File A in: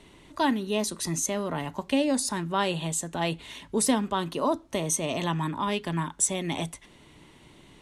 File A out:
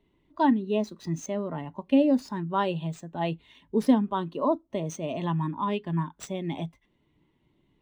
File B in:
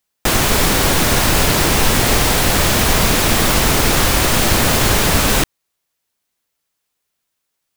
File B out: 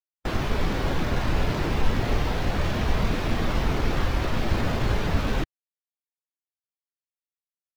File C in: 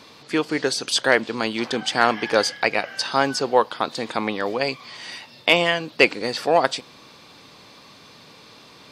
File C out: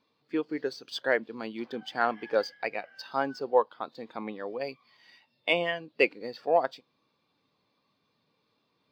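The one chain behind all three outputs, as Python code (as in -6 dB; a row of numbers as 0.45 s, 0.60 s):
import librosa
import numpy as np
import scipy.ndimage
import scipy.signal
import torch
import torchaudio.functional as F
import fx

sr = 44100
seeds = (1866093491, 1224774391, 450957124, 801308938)

y = scipy.signal.medfilt(x, 5)
y = fx.spectral_expand(y, sr, expansion=1.5)
y = librosa.util.normalize(y) * 10.0 ** (-9 / 20.0)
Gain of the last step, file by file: +2.0 dB, -6.5 dB, -8.0 dB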